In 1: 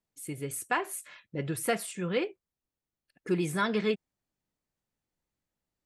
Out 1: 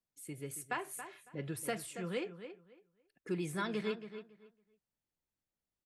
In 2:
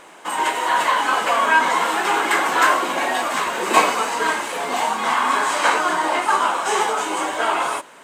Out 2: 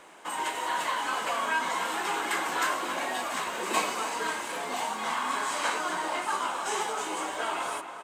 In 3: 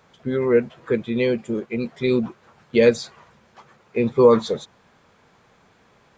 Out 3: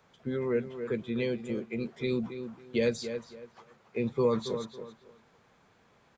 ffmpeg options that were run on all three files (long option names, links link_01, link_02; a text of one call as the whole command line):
ffmpeg -i in.wav -filter_complex "[0:a]asplit=2[link_01][link_02];[link_02]adelay=277,lowpass=frequency=3800:poles=1,volume=-11.5dB,asplit=2[link_03][link_04];[link_04]adelay=277,lowpass=frequency=3800:poles=1,volume=0.21,asplit=2[link_05][link_06];[link_06]adelay=277,lowpass=frequency=3800:poles=1,volume=0.21[link_07];[link_01][link_03][link_05][link_07]amix=inputs=4:normalize=0,acrossover=split=210|3000[link_08][link_09][link_10];[link_09]acompressor=threshold=-28dB:ratio=1.5[link_11];[link_08][link_11][link_10]amix=inputs=3:normalize=0,volume=-7.5dB" out.wav